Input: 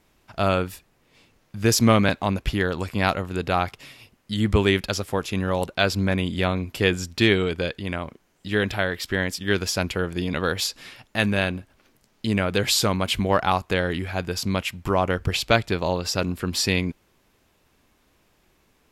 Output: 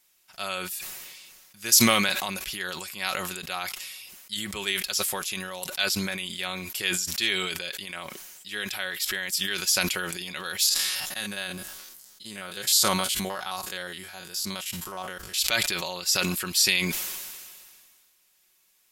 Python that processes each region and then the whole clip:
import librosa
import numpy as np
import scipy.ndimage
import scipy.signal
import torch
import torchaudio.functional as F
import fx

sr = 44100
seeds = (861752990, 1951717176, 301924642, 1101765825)

y = fx.chain(x, sr, fx.spec_steps(hold_ms=50),
    fx.peak_eq(hz=2400.0, db=-7.0, octaves=0.58), at=(10.69, 15.38))
y = scipy.signal.lfilter([1.0, -0.97], [1.0], y)
y = y + 0.49 * np.pad(y, (int(5.4 * sr / 1000.0), 0))[:len(y)]
y = fx.sustainer(y, sr, db_per_s=30.0)
y = F.gain(torch.from_numpy(y), 4.5).numpy()